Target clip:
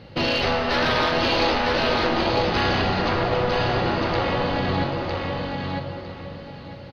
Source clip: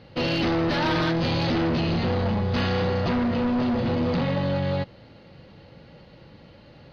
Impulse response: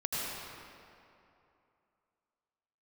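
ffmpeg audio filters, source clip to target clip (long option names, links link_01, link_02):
-filter_complex "[0:a]asplit=2[link_01][link_02];[1:a]atrim=start_sample=2205,adelay=18[link_03];[link_02][link_03]afir=irnorm=-1:irlink=0,volume=-11.5dB[link_04];[link_01][link_04]amix=inputs=2:normalize=0,afftfilt=real='re*lt(hypot(re,im),0.355)':imag='im*lt(hypot(re,im),0.355)':win_size=1024:overlap=0.75,aecho=1:1:955|1910|2865:0.631|0.133|0.0278,volume=4.5dB"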